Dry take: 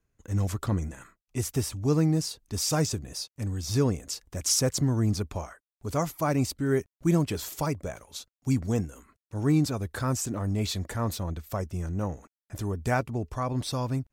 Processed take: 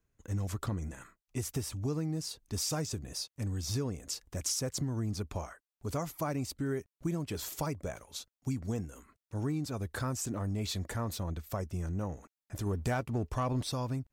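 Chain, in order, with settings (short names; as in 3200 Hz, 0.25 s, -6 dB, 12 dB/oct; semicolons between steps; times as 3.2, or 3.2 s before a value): compressor 6:1, threshold -28 dBFS, peak gain reduction 10 dB; 12.66–13.63 sample leveller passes 1; gain -2.5 dB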